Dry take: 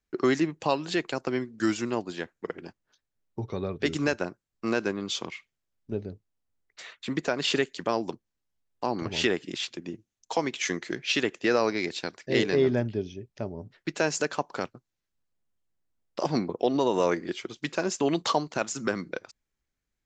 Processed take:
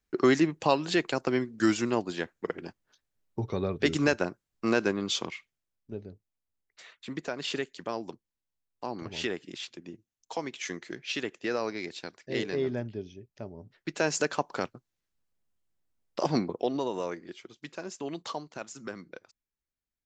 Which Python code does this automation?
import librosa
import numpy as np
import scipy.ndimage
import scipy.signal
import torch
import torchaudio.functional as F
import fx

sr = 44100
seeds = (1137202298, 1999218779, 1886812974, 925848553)

y = fx.gain(x, sr, db=fx.line((5.18, 1.5), (5.91, -7.0), (13.58, -7.0), (14.16, 0.0), (16.36, 0.0), (17.16, -11.0)))